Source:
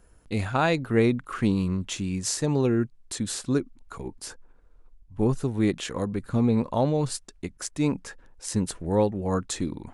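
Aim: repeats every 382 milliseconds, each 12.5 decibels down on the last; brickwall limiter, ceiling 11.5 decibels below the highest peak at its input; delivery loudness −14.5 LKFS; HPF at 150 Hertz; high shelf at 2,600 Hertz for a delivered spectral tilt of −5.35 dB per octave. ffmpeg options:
ffmpeg -i in.wav -af "highpass=150,highshelf=frequency=2600:gain=-5,alimiter=limit=-20dB:level=0:latency=1,aecho=1:1:382|764|1146:0.237|0.0569|0.0137,volume=17.5dB" out.wav

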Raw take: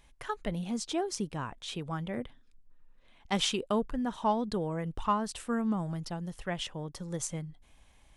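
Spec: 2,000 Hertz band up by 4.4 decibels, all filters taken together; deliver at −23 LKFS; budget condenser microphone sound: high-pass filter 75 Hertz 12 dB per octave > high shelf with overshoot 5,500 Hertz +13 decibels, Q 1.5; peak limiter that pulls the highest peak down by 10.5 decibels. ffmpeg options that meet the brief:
ffmpeg -i in.wav -af "equalizer=frequency=2000:width_type=o:gain=7,alimiter=level_in=1dB:limit=-24dB:level=0:latency=1,volume=-1dB,highpass=75,highshelf=frequency=5500:width_type=q:width=1.5:gain=13,volume=10dB" out.wav

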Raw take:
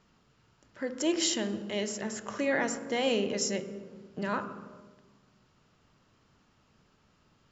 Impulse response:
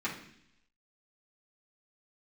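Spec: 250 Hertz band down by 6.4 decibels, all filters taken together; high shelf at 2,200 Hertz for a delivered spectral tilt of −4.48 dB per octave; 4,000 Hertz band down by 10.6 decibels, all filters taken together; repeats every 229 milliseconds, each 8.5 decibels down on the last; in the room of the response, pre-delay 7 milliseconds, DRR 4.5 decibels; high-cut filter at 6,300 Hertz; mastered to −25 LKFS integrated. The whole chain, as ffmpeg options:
-filter_complex "[0:a]lowpass=6300,equalizer=frequency=250:width_type=o:gain=-8.5,highshelf=frequency=2200:gain=-8,equalizer=frequency=4000:width_type=o:gain=-6.5,aecho=1:1:229|458|687|916:0.376|0.143|0.0543|0.0206,asplit=2[link_01][link_02];[1:a]atrim=start_sample=2205,adelay=7[link_03];[link_02][link_03]afir=irnorm=-1:irlink=0,volume=-10.5dB[link_04];[link_01][link_04]amix=inputs=2:normalize=0,volume=10dB"

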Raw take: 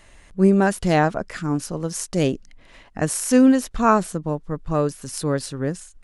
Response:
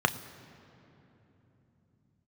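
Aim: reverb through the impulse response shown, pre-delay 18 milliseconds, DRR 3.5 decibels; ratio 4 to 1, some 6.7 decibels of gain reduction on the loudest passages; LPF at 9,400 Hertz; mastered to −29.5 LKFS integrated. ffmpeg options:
-filter_complex "[0:a]lowpass=9400,acompressor=threshold=-18dB:ratio=4,asplit=2[link_01][link_02];[1:a]atrim=start_sample=2205,adelay=18[link_03];[link_02][link_03]afir=irnorm=-1:irlink=0,volume=-16dB[link_04];[link_01][link_04]amix=inputs=2:normalize=0,volume=-5.5dB"

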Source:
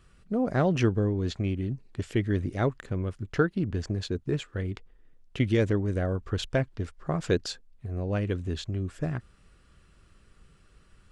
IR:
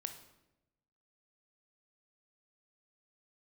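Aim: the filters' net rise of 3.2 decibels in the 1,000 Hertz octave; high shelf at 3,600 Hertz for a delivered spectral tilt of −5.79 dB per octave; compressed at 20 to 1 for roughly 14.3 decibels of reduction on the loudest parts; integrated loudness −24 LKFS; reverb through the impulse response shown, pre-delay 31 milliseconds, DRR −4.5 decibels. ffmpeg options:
-filter_complex "[0:a]equalizer=frequency=1000:width_type=o:gain=4,highshelf=frequency=3600:gain=7.5,acompressor=threshold=-32dB:ratio=20,asplit=2[link_01][link_02];[1:a]atrim=start_sample=2205,adelay=31[link_03];[link_02][link_03]afir=irnorm=-1:irlink=0,volume=6.5dB[link_04];[link_01][link_04]amix=inputs=2:normalize=0,volume=8dB"

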